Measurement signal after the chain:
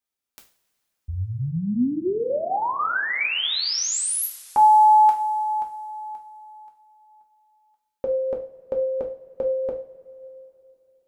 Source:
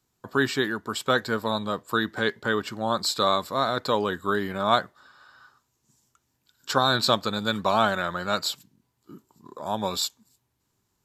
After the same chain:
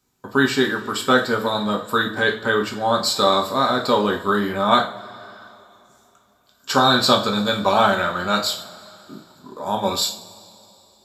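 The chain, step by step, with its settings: two-slope reverb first 0.38 s, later 3.2 s, from -22 dB, DRR 0 dB; gain +3 dB

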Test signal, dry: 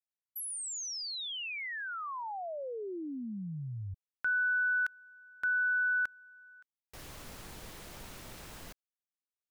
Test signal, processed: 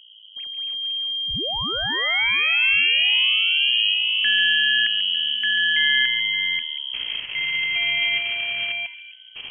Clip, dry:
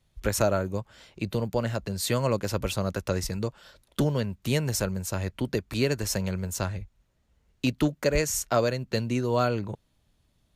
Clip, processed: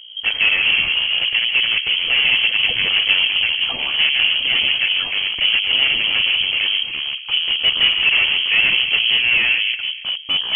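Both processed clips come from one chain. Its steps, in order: half-wave gain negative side -12 dB; hum 60 Hz, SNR 26 dB; in parallel at -6.5 dB: sine folder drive 19 dB, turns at -10.5 dBFS; on the sum: ten-band EQ 250 Hz +7 dB, 500 Hz +8 dB, 1000 Hz +7 dB, 2000 Hz -6 dB; on a send: band-limited delay 0.14 s, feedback 48%, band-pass 670 Hz, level -7.5 dB; on the sum: echoes that change speed 97 ms, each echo -5 st, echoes 2; inverted band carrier 3200 Hz; gain -4 dB

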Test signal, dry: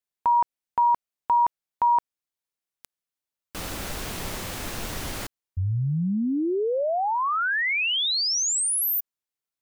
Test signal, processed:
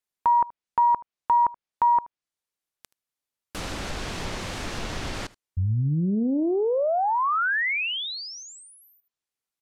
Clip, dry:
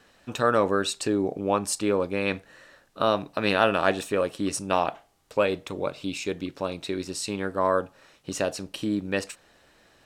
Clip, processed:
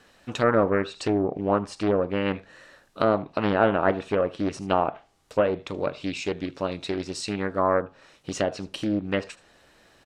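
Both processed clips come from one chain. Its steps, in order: echo 77 ms -22 dB; treble ducked by the level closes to 1500 Hz, closed at -20.5 dBFS; Doppler distortion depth 0.39 ms; gain +1.5 dB

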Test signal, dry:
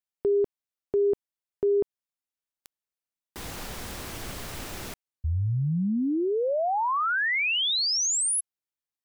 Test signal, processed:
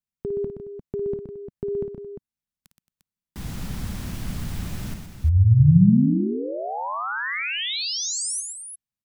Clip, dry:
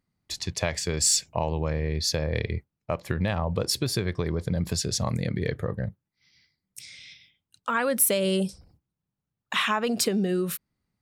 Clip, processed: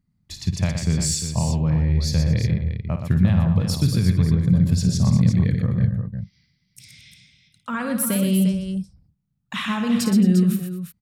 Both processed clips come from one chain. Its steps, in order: resonant low shelf 280 Hz +12 dB, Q 1.5; on a send: tapped delay 55/122/222/350 ms -9/-7/-17/-9 dB; on the sum: gain -3.5 dB

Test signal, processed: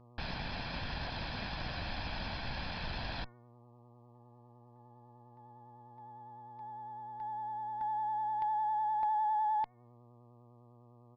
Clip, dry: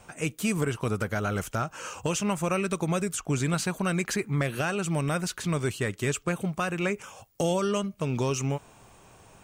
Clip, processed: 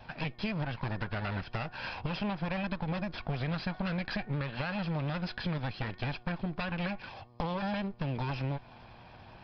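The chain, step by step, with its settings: minimum comb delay 1.2 ms; buzz 120 Hz, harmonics 10, -62 dBFS -5 dB/oct; downsampling 11025 Hz; de-hum 364.4 Hz, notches 6; compressor 4:1, threshold -35 dBFS; vibrato 9.9 Hz 35 cents; gain +3 dB

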